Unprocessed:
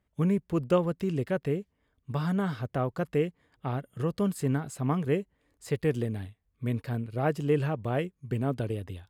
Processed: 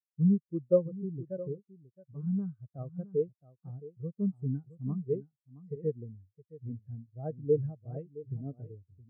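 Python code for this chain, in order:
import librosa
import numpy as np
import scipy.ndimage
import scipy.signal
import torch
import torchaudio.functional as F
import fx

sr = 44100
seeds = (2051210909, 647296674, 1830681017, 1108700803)

y = x + 10.0 ** (-7.0 / 20.0) * np.pad(x, (int(667 * sr / 1000.0), 0))[:len(x)]
y = fx.spectral_expand(y, sr, expansion=2.5)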